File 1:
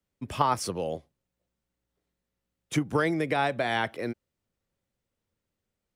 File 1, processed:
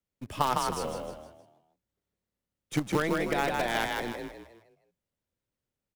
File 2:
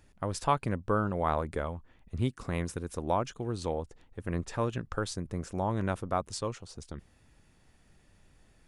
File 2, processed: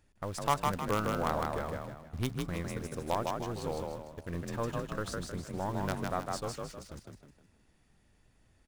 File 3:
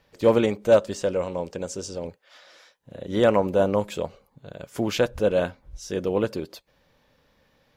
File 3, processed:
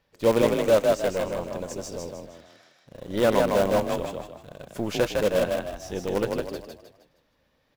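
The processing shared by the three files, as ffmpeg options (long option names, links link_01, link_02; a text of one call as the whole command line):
ffmpeg -i in.wav -filter_complex "[0:a]asplit=2[link_01][link_02];[link_02]acrusher=bits=4:dc=4:mix=0:aa=0.000001,volume=-3.5dB[link_03];[link_01][link_03]amix=inputs=2:normalize=0,asplit=6[link_04][link_05][link_06][link_07][link_08][link_09];[link_05]adelay=156,afreqshift=35,volume=-3dB[link_10];[link_06]adelay=312,afreqshift=70,volume=-11.2dB[link_11];[link_07]adelay=468,afreqshift=105,volume=-19.4dB[link_12];[link_08]adelay=624,afreqshift=140,volume=-27.5dB[link_13];[link_09]adelay=780,afreqshift=175,volume=-35.7dB[link_14];[link_04][link_10][link_11][link_12][link_13][link_14]amix=inputs=6:normalize=0,volume=-7dB" out.wav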